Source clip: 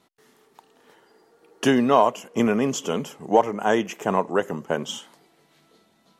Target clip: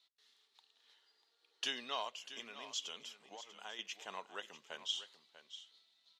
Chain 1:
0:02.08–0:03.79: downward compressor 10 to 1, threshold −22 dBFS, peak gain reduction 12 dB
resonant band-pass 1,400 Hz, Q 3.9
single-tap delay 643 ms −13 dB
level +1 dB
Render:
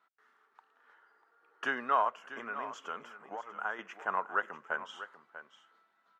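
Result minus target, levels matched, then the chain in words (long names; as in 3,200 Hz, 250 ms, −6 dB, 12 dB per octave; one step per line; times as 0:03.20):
4,000 Hz band −19.0 dB
0:02.08–0:03.79: downward compressor 10 to 1, threshold −22 dBFS, peak gain reduction 12 dB
resonant band-pass 3,900 Hz, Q 3.9
single-tap delay 643 ms −13 dB
level +1 dB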